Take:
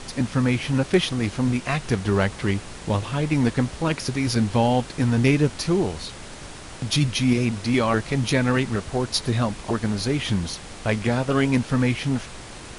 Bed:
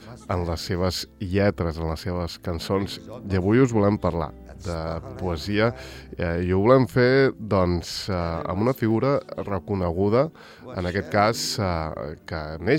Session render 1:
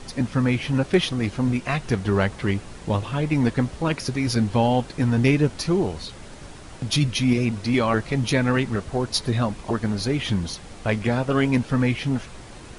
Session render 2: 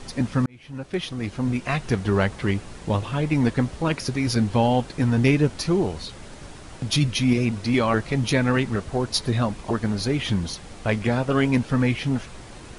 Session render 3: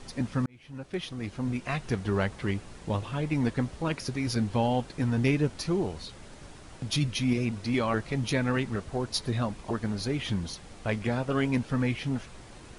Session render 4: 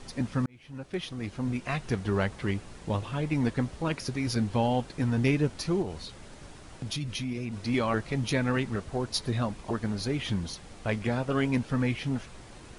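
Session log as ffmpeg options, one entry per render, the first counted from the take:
-af "afftdn=nr=6:nf=-39"
-filter_complex "[0:a]asplit=2[a][b];[a]atrim=end=0.46,asetpts=PTS-STARTPTS,afade=t=out:st=0.456:d=0.004:c=hsin[c];[b]atrim=start=0.46,asetpts=PTS-STARTPTS,afade=t=in:d=1.28[d];[c][d]concat=n=2:v=0:a=1"
-af "volume=-6.5dB"
-filter_complex "[0:a]asettb=1/sr,asplit=3[a][b][c];[a]atrim=end=5.824[d];[b]atrim=start=5.82:end=7.67,asetpts=PTS-STARTPTS,afade=t=in:d=0.004:c=qsin,afade=t=out:st=1.846:d=0.004:c=qsin,acompressor=threshold=-30dB:ratio=4:attack=3.2:release=140:knee=1:detection=peak[e];[c]atrim=start=7.666[f];[d][e]acrossfade=d=0.004:c1=hsin:c2=qsin[g];[g][f]acrossfade=d=0.004:c1=qsin:c2=hsin"

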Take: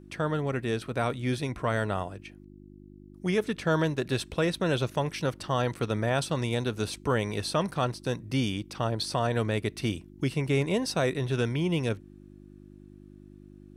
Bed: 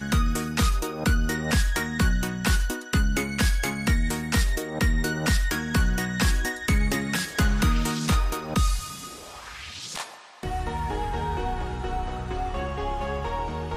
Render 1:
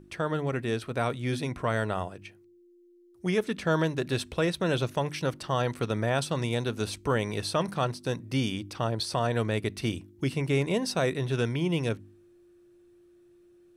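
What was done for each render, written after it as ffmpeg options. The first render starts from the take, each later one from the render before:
-af "bandreject=f=50:t=h:w=4,bandreject=f=100:t=h:w=4,bandreject=f=150:t=h:w=4,bandreject=f=200:t=h:w=4,bandreject=f=250:t=h:w=4,bandreject=f=300:t=h:w=4"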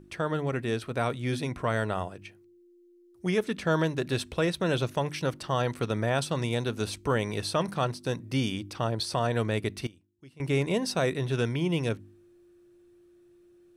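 -filter_complex "[0:a]asplit=3[a][b][c];[a]atrim=end=9.87,asetpts=PTS-STARTPTS,afade=t=out:st=9.6:d=0.27:c=log:silence=0.0749894[d];[b]atrim=start=9.87:end=10.4,asetpts=PTS-STARTPTS,volume=-22.5dB[e];[c]atrim=start=10.4,asetpts=PTS-STARTPTS,afade=t=in:d=0.27:c=log:silence=0.0749894[f];[d][e][f]concat=n=3:v=0:a=1"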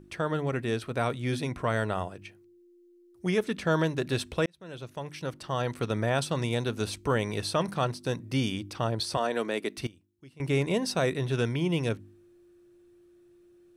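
-filter_complex "[0:a]asettb=1/sr,asplit=3[a][b][c];[a]atrim=end=9.174[d];[b]atrim=start=9.17:end=9.78,asetpts=PTS-STARTPTS,afade=t=in:d=0.004:c=qsin,afade=t=out:st=0.606:d=0.004:c=qsin,highpass=f=230:w=0.5412,highpass=f=230:w=1.3066[e];[c]atrim=start=9.776[f];[d][e]acrossfade=d=0.004:c1=hsin:c2=qsin[g];[g][f]acrossfade=d=0.004:c1=qsin:c2=hsin,asplit=2[h][i];[h]atrim=end=4.46,asetpts=PTS-STARTPTS,afade=t=out:st=4.456:d=0.004:c=hsin[j];[i]atrim=start=4.46,asetpts=PTS-STARTPTS,afade=t=in:d=1.5[k];[j][k]concat=n=2:v=0:a=1"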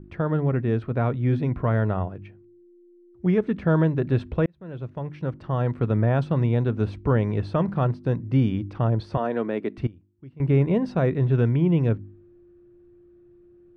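-af "lowpass=1.8k,lowshelf=f=290:g=12"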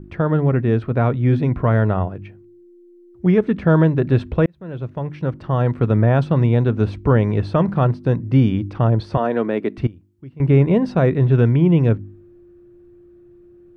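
-af "volume=6dB"

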